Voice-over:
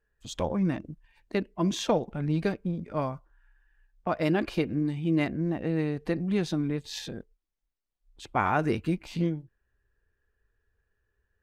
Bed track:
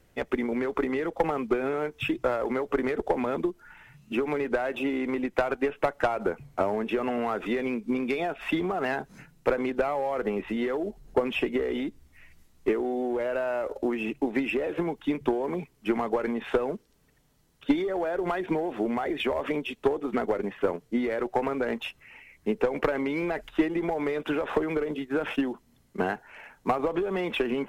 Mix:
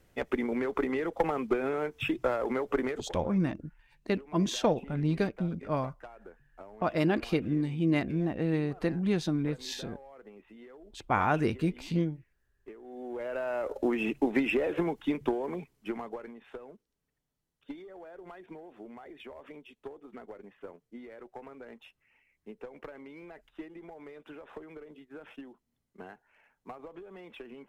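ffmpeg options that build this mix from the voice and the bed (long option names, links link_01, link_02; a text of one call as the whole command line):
ffmpeg -i stem1.wav -i stem2.wav -filter_complex "[0:a]adelay=2750,volume=-1dB[link_01];[1:a]volume=20dB,afade=type=out:start_time=2.81:duration=0.32:silence=0.1,afade=type=in:start_time=12.81:duration=1.15:silence=0.0749894,afade=type=out:start_time=14.64:duration=1.72:silence=0.112202[link_02];[link_01][link_02]amix=inputs=2:normalize=0" out.wav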